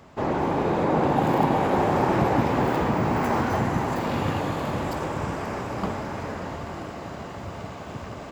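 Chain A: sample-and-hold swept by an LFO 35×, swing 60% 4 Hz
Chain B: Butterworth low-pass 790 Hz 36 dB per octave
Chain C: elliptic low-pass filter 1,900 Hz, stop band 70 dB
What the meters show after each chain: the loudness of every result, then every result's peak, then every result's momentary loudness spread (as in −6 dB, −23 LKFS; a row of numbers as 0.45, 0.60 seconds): −24.5, −26.5, −25.5 LKFS; −8.5, −9.5, −8.0 dBFS; 15, 15, 15 LU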